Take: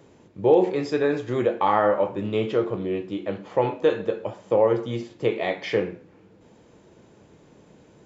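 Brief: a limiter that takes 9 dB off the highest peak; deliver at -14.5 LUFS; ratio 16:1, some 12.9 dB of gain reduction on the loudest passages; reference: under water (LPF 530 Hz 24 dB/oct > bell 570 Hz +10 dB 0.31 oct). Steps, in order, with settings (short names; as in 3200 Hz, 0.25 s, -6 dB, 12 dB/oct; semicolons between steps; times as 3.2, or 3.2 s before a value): compressor 16:1, threshold -26 dBFS; limiter -24 dBFS; LPF 530 Hz 24 dB/oct; bell 570 Hz +10 dB 0.31 oct; gain +19.5 dB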